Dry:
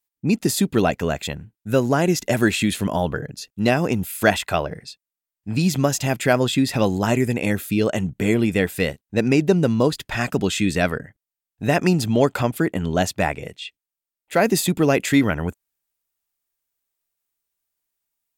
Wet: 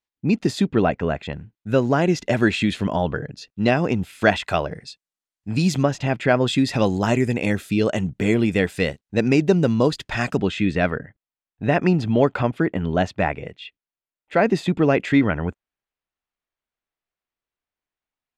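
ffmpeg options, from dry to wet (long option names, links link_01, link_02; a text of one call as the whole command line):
ffmpeg -i in.wav -af "asetnsamples=nb_out_samples=441:pad=0,asendcmd='0.68 lowpass f 2300;1.33 lowpass f 4300;4.44 lowpass f 7800;5.83 lowpass f 3000;6.47 lowpass f 6800;10.37 lowpass f 2800',lowpass=4000" out.wav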